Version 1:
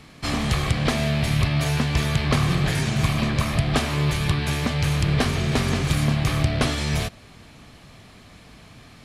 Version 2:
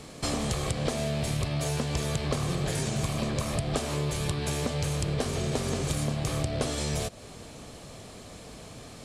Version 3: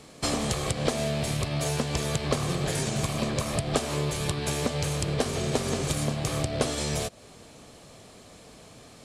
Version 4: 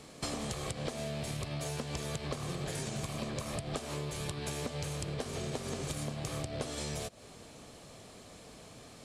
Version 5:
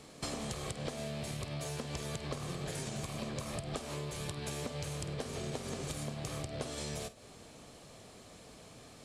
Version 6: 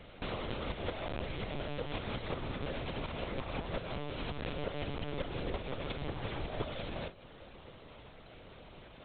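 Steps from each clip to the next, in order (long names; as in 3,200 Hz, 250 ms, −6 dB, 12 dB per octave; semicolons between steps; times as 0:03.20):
octave-band graphic EQ 500/2,000/8,000 Hz +9/−4/+10 dB; downward compressor 3 to 1, threshold −29 dBFS, peak gain reduction 12.5 dB
low-shelf EQ 120 Hz −6 dB; expander for the loud parts 1.5 to 1, over −43 dBFS; level +5 dB
downward compressor 3 to 1, threshold −34 dBFS, peak gain reduction 11.5 dB; level −2.5 dB
flutter between parallel walls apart 8.5 metres, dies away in 0.21 s; level −2 dB
lower of the sound and its delayed copy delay 2 ms; linear-prediction vocoder at 8 kHz pitch kept; level +4 dB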